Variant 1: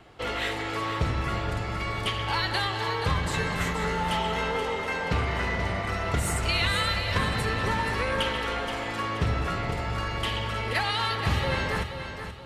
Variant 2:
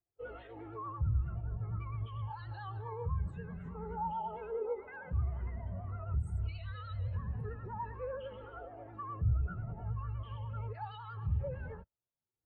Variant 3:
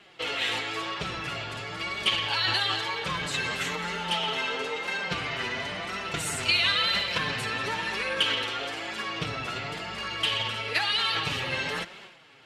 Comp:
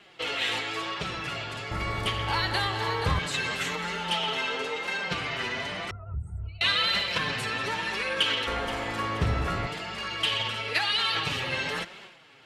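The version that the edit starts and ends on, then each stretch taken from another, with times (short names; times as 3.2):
3
1.71–3.19 from 1
5.91–6.61 from 2
8.47–9.67 from 1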